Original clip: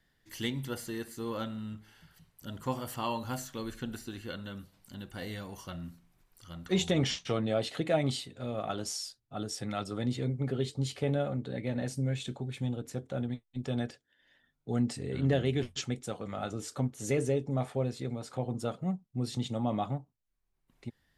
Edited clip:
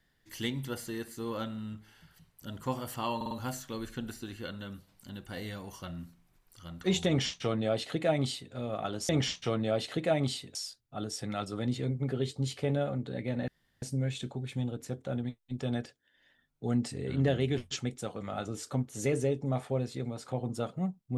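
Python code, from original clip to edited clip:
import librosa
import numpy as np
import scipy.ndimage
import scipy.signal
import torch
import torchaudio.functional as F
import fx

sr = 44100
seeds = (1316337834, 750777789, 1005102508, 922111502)

y = fx.edit(x, sr, fx.stutter(start_s=3.16, slice_s=0.05, count=4),
    fx.duplicate(start_s=6.92, length_s=1.46, to_s=8.94),
    fx.insert_room_tone(at_s=11.87, length_s=0.34), tone=tone)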